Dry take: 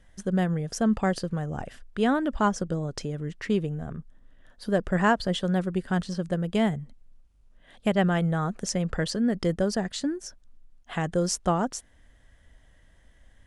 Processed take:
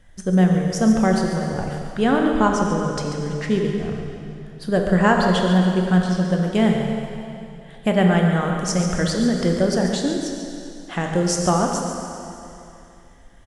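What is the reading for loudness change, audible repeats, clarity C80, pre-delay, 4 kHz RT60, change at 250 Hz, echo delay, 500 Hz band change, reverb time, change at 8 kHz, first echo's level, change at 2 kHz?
+7.0 dB, 1, 2.5 dB, 4 ms, 2.6 s, +8.0 dB, 0.141 s, +7.0 dB, 2.8 s, +7.0 dB, -10.0 dB, +6.5 dB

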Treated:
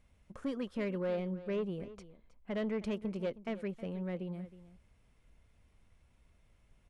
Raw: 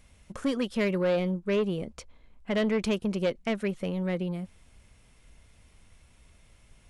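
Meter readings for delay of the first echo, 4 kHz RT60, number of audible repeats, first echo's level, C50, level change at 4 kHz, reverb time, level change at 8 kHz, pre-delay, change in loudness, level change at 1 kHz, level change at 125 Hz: 0.316 s, none, 1, -16.0 dB, none, -14.0 dB, none, under -15 dB, none, -9.0 dB, -9.5 dB, -8.5 dB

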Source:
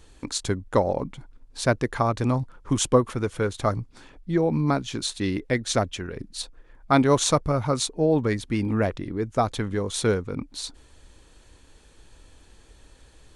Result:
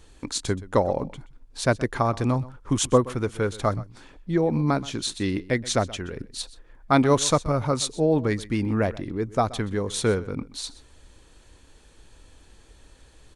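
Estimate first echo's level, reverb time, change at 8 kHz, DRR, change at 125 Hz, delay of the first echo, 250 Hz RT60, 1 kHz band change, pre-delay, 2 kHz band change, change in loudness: -19.0 dB, none, 0.0 dB, none, 0.0 dB, 0.126 s, none, 0.0 dB, none, 0.0 dB, 0.0 dB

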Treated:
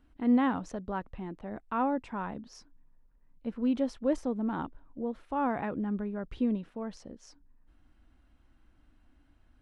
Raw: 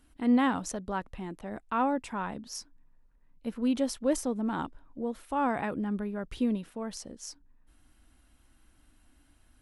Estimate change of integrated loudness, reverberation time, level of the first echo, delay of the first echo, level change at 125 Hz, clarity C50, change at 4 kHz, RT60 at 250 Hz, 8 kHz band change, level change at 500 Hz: -1.0 dB, none, none, none, -0.5 dB, none, -8.5 dB, none, under -10 dB, -1.0 dB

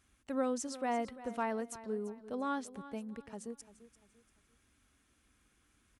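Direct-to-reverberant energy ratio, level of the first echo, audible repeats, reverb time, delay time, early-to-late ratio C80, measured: none, -15.5 dB, 3, none, 0.343 s, none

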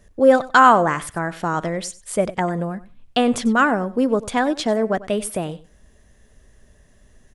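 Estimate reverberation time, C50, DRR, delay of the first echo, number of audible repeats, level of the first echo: none, none, none, 95 ms, 2, -18.0 dB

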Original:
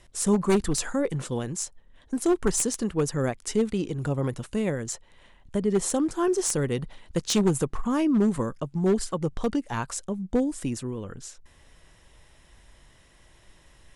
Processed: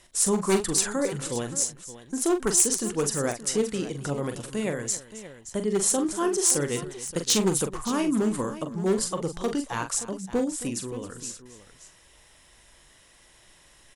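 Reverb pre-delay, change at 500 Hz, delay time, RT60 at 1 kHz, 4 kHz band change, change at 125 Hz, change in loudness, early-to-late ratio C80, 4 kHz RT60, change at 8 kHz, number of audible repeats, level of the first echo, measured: none, -0.5 dB, 42 ms, none, +4.5 dB, -4.5 dB, +1.0 dB, none, none, +6.5 dB, 3, -8.0 dB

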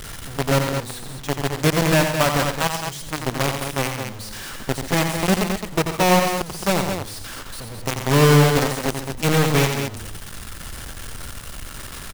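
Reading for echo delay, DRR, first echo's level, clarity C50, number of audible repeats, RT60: 88 ms, none, -6.5 dB, none, 3, none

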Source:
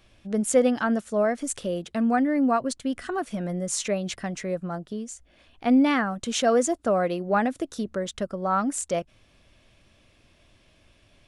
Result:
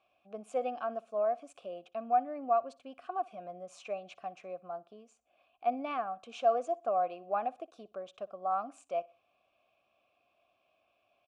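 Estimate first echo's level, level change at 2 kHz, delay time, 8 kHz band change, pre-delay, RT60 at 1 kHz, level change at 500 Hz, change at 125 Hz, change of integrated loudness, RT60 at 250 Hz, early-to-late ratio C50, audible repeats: -22.5 dB, -17.5 dB, 61 ms, under -25 dB, none, none, -8.5 dB, under -25 dB, -9.5 dB, none, none, 2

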